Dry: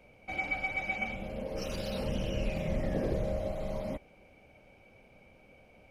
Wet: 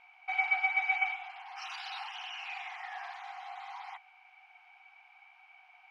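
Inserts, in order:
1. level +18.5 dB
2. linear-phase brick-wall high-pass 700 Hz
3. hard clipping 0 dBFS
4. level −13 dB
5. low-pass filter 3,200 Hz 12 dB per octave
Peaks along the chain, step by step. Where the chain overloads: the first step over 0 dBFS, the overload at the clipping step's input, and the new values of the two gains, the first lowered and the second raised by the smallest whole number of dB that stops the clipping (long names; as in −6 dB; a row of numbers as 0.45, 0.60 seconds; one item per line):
−1.5, −3.5, −3.5, −16.5, −17.5 dBFS
no step passes full scale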